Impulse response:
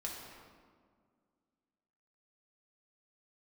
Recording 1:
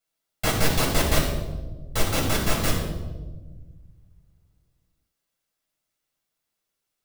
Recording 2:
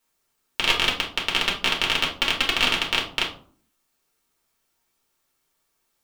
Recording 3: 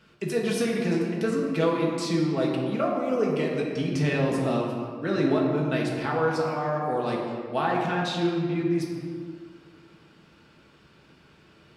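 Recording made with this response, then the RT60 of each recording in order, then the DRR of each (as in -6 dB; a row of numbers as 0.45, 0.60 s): 3; 1.3, 0.50, 1.9 s; -3.0, -3.0, -3.0 dB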